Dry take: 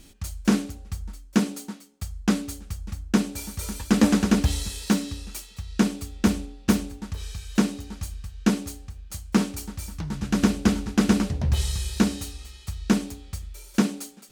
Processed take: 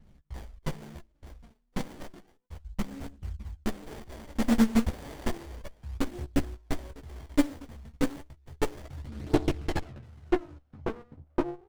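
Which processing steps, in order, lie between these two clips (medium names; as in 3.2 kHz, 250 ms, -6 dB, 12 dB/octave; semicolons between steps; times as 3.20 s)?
gliding tape speed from 69% -> 176%; gate with hold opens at -44 dBFS; hum notches 50/100/150/200/250/300/350/400 Hz; level-controlled noise filter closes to 2.4 kHz, open at -21 dBFS; treble shelf 3.2 kHz +11 dB; level held to a coarse grid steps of 19 dB; low-pass sweep 8.4 kHz -> 520 Hz, 8.50–11.46 s; hard clipper -11 dBFS, distortion -22 dB; phaser 0.32 Hz, delay 4.6 ms, feedback 71%; doubling 14 ms -3 dB; sliding maximum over 33 samples; trim -7.5 dB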